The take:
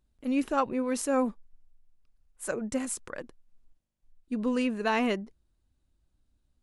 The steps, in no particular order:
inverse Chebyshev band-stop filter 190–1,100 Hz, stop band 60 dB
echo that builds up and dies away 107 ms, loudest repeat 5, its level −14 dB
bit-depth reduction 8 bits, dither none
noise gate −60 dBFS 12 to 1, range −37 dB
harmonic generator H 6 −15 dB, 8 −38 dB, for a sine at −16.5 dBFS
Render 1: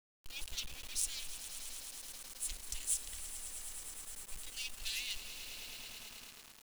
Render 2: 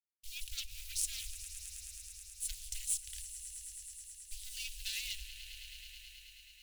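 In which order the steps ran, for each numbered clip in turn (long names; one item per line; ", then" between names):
harmonic generator, then echo that builds up and dies away, then noise gate, then inverse Chebyshev band-stop filter, then bit-depth reduction
bit-depth reduction, then echo that builds up and dies away, then harmonic generator, then inverse Chebyshev band-stop filter, then noise gate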